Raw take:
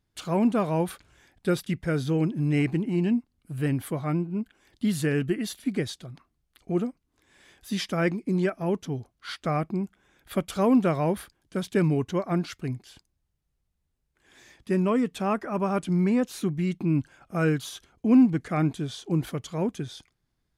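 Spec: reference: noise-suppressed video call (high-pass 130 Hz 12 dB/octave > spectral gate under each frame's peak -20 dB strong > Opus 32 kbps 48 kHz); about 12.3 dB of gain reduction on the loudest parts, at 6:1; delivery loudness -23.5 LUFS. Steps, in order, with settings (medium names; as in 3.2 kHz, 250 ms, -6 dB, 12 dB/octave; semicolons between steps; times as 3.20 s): compression 6:1, threshold -27 dBFS; high-pass 130 Hz 12 dB/octave; spectral gate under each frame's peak -20 dB strong; trim +10 dB; Opus 32 kbps 48 kHz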